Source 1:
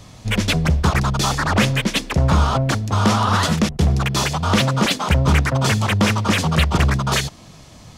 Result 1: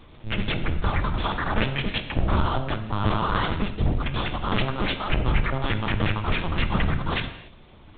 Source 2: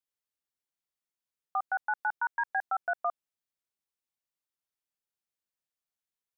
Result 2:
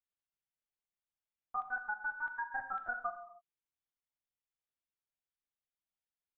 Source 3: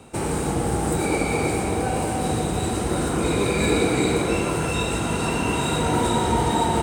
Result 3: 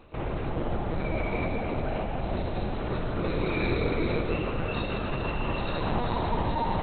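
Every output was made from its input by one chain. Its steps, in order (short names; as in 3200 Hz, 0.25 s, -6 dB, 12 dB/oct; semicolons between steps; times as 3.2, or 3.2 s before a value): LPC vocoder at 8 kHz pitch kept; non-linear reverb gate 0.32 s falling, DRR 7.5 dB; gain -6.5 dB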